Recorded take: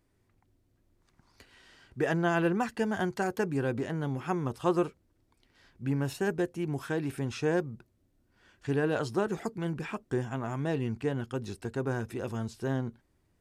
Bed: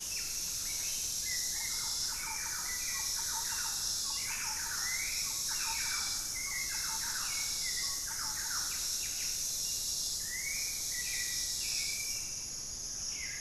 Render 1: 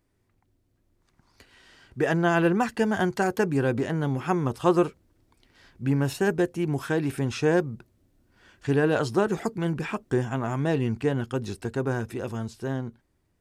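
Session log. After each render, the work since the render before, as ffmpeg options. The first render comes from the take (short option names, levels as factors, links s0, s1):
-af "dynaudnorm=f=400:g=9:m=2"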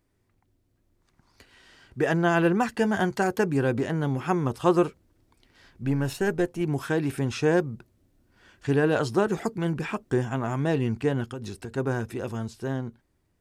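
-filter_complex "[0:a]asettb=1/sr,asplit=3[s0][s1][s2];[s0]atrim=end=2.754[s3];[s1]atrim=start=2.75:end=3.17,asetpts=PTS-STARTPTS,afade=t=in:d=0.004:c=qsin,afade=t=out:st=0.416:d=0.004:c=qsin,asplit=2[s4][s5];[s5]adelay=15,volume=0.251[s6];[s4][s6]amix=inputs=2:normalize=0,atrim=end_sample=18522[s7];[s2]atrim=start=3.166[s8];[s3][s7]acrossfade=d=0.004:c1=hsin:c2=qsin[s9];[s9][s8]acrossfade=d=0.004:c1=qsin:c2=hsin,asettb=1/sr,asplit=3[s10][s11][s12];[s10]atrim=end=5.834[s13];[s11]atrim=start=5.83:end=6.61,asetpts=PTS-STARTPTS,afade=t=in:d=0.004:c=qsin,afade=t=out:st=0.776:d=0.004:c=qsin,aeval=exprs='if(lt(val(0),0),0.708*val(0),val(0))':c=same[s14];[s12]atrim=start=6.606[s15];[s13][s14]acrossfade=d=0.004:c1=hsin:c2=qsin[s16];[s16][s15]acrossfade=d=0.004:c1=qsin:c2=hsin,asplit=3[s17][s18][s19];[s17]afade=t=out:st=11.29:d=0.02[s20];[s18]acompressor=threshold=0.0282:ratio=6:attack=3.2:release=140:knee=1:detection=peak,afade=t=in:st=11.29:d=0.02,afade=t=out:st=11.76:d=0.02[s21];[s19]afade=t=in:st=11.76:d=0.02[s22];[s20][s21][s22]amix=inputs=3:normalize=0"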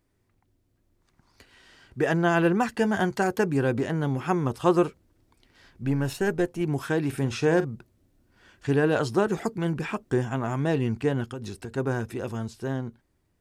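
-filter_complex "[0:a]asettb=1/sr,asplit=3[s0][s1][s2];[s0]atrim=end=7.084[s3];[s1]atrim=start=7.08:end=7.65,asetpts=PTS-STARTPTS,afade=t=in:d=0.004:c=qsin,afade=t=out:st=0.566:d=0.004:c=qsin,asplit=2[s4][s5];[s5]adelay=44,volume=0.237[s6];[s4][s6]amix=inputs=2:normalize=0,atrim=end_sample=25137[s7];[s2]atrim=start=7.646[s8];[s3][s7]acrossfade=d=0.004:c1=hsin:c2=qsin[s9];[s9][s8]acrossfade=d=0.004:c1=qsin:c2=hsin"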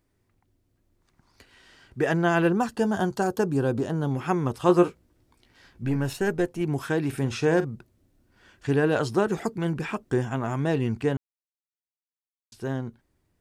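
-filter_complex "[0:a]asettb=1/sr,asplit=3[s0][s1][s2];[s0]atrim=end=2.494[s3];[s1]atrim=start=2.49:end=4.11,asetpts=PTS-STARTPTS,afade=t=in:d=0.004:c=qsin,afade=t=out:st=1.616:d=0.004:c=qsin,equalizer=f=2100:t=o:w=0.6:g=-13[s4];[s2]atrim=start=4.106[s5];[s3][s4]acrossfade=d=0.004:c1=hsin:c2=qsin[s6];[s6][s5]acrossfade=d=0.004:c1=qsin:c2=hsin,asettb=1/sr,asplit=3[s7][s8][s9];[s7]atrim=end=4.674[s10];[s8]atrim=start=4.67:end=5.96,asetpts=PTS-STARTPTS,afade=t=in:d=0.004:c=qsin,afade=t=out:st=1.286:d=0.004:c=qsin,asplit=2[s11][s12];[s12]adelay=17,volume=0.447[s13];[s11][s13]amix=inputs=2:normalize=0,atrim=end_sample=56889[s14];[s9]atrim=start=5.956[s15];[s10][s14]acrossfade=d=0.004:c1=hsin:c2=qsin[s16];[s16][s15]acrossfade=d=0.004:c1=qsin:c2=hsin,asplit=3[s17][s18][s19];[s17]atrim=end=11.17,asetpts=PTS-STARTPTS,afade=t=out:st=11.166:d=0.004:c=hsin[s20];[s18]atrim=start=11.17:end=12.52,asetpts=PTS-STARTPTS,volume=0[s21];[s19]atrim=start=12.52,asetpts=PTS-STARTPTS,afade=t=in:d=0.004:c=hsin[s22];[s20][s21][s22]concat=n=3:v=0:a=1"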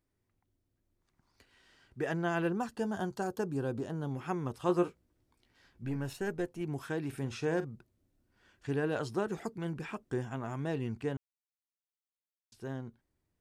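-af "volume=0.316"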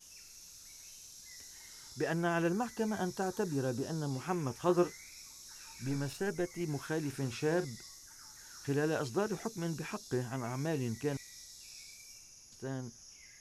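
-filter_complex "[1:a]volume=0.15[s0];[0:a][s0]amix=inputs=2:normalize=0"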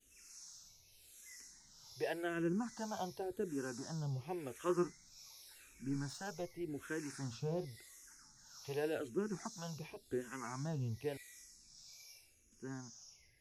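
-filter_complex "[0:a]acrossover=split=410[s0][s1];[s0]aeval=exprs='val(0)*(1-0.7/2+0.7/2*cos(2*PI*1.2*n/s))':c=same[s2];[s1]aeval=exprs='val(0)*(1-0.7/2-0.7/2*cos(2*PI*1.2*n/s))':c=same[s3];[s2][s3]amix=inputs=2:normalize=0,asplit=2[s4][s5];[s5]afreqshift=-0.89[s6];[s4][s6]amix=inputs=2:normalize=1"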